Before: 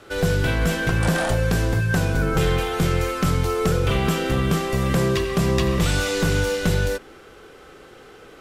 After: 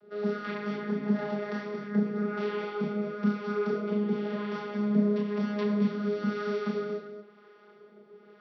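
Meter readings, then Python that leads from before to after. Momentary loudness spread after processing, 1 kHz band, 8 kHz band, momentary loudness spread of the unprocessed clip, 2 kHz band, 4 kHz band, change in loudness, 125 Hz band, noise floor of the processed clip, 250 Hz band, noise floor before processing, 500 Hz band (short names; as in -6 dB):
6 LU, -11.0 dB, under -30 dB, 2 LU, -14.5 dB, -19.0 dB, -9.0 dB, -17.0 dB, -56 dBFS, -3.5 dB, -46 dBFS, -7.0 dB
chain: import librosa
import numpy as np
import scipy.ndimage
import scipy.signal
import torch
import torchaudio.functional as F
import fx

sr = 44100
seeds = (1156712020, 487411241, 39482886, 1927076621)

y = fx.peak_eq(x, sr, hz=360.0, db=5.5, octaves=0.6)
y = fx.harmonic_tremolo(y, sr, hz=1.0, depth_pct=70, crossover_hz=540.0)
y = fx.vocoder(y, sr, bands=16, carrier='saw', carrier_hz=207.0)
y = fx.chorus_voices(y, sr, voices=4, hz=0.66, base_ms=30, depth_ms=4.5, mix_pct=40)
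y = scipy.signal.sosfilt(scipy.signal.cheby1(6, 3, 5700.0, 'lowpass', fs=sr, output='sos'), y)
y = y + 10.0 ** (-9.0 / 20.0) * np.pad(y, (int(231 * sr / 1000.0), 0))[:len(y)]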